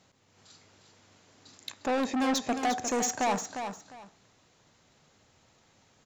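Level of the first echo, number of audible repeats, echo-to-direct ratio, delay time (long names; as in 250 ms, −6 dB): −8.0 dB, 2, −8.0 dB, 353 ms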